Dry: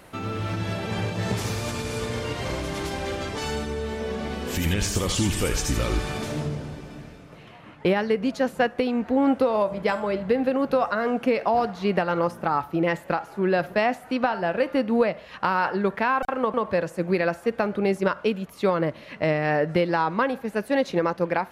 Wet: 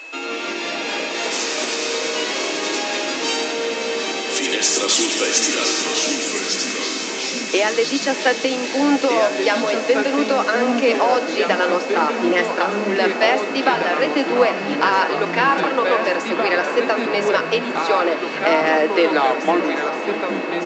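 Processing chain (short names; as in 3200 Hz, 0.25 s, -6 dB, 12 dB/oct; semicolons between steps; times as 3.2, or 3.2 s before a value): tape stop at the end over 1.84 s; speed mistake 24 fps film run at 25 fps; steep high-pass 250 Hz 96 dB/oct; high shelf 2500 Hz +11 dB; comb 6.2 ms, depth 38%; diffused feedback echo 0.618 s, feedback 80%, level -12 dB; whine 2600 Hz -37 dBFS; echoes that change speed 0.137 s, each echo -3 st, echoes 3, each echo -6 dB; gain +3 dB; µ-law 128 kbps 16000 Hz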